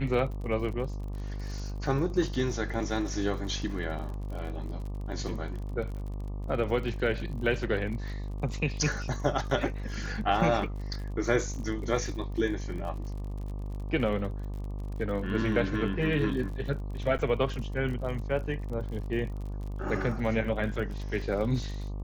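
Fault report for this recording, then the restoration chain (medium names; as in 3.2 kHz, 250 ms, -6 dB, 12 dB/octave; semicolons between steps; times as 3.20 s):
buzz 50 Hz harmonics 24 -35 dBFS
crackle 46 per s -38 dBFS
17.18–17.19 s: dropout 8.9 ms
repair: de-click; de-hum 50 Hz, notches 24; interpolate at 17.18 s, 8.9 ms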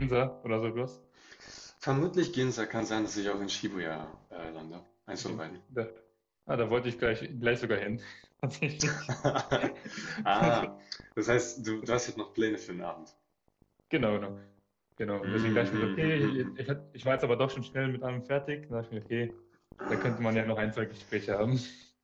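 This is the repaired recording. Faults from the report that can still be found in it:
nothing left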